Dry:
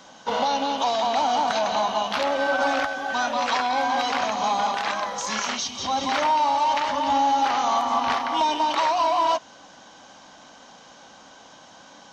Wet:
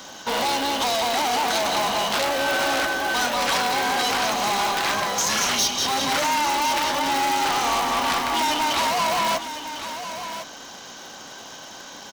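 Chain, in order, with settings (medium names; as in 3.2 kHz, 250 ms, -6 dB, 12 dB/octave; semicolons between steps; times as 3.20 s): in parallel at -7 dB: sample-and-hold 37×; on the sum: saturation -26 dBFS, distortion -8 dB; tilt EQ +2 dB/octave; delay 1054 ms -10.5 dB; trim +6 dB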